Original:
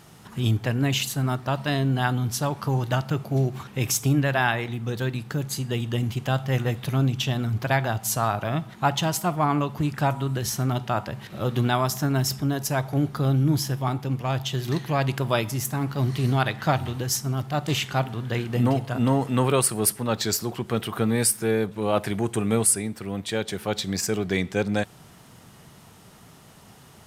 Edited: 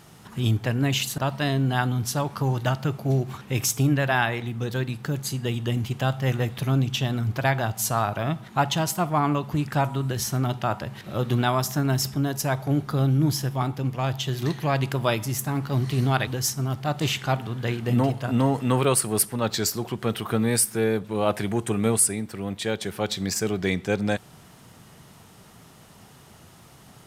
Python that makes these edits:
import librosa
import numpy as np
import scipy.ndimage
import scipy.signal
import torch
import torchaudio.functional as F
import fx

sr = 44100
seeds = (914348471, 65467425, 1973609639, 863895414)

y = fx.edit(x, sr, fx.cut(start_s=1.18, length_s=0.26),
    fx.cut(start_s=16.53, length_s=0.41), tone=tone)